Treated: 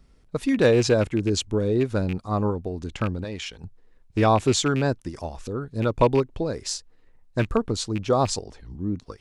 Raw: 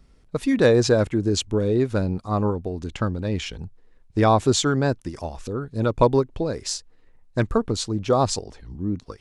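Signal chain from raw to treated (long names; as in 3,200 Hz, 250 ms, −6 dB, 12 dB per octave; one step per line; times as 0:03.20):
loose part that buzzes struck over −23 dBFS, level −22 dBFS
0:03.24–0:03.64: low-shelf EQ 380 Hz −10.5 dB
level −1.5 dB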